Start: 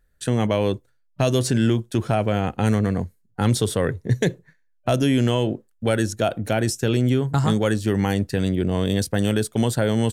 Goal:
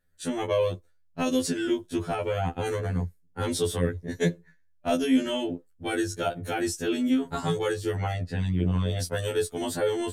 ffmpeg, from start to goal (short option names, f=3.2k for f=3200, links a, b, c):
-filter_complex "[0:a]asettb=1/sr,asplit=3[a][b][c];[a]atrim=end=7.954[d];[b]atrim=start=7.95:end=9,asetpts=PTS-STARTPTS,afade=t=in:d=0.004:c=qsin,afade=t=out:st=1.046:d=0.004:c=qsin,aemphasis=mode=reproduction:type=50fm[e];[c]atrim=start=8.996[f];[d][e]acrossfade=d=0.004:c1=hsin:c2=qsin[g];[g][f]acrossfade=d=0.004:c1=qsin:c2=hsin,afftfilt=real='re*2*eq(mod(b,4),0)':imag='im*2*eq(mod(b,4),0)':win_size=2048:overlap=0.75,volume=-2.5dB"